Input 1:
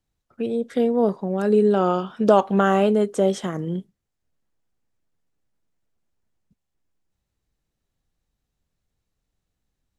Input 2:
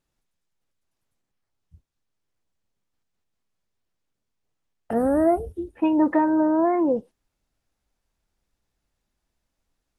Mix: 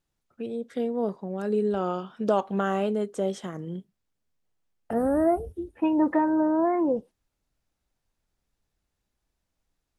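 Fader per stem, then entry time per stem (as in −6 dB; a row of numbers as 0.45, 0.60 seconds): −8.0, −3.0 decibels; 0.00, 0.00 seconds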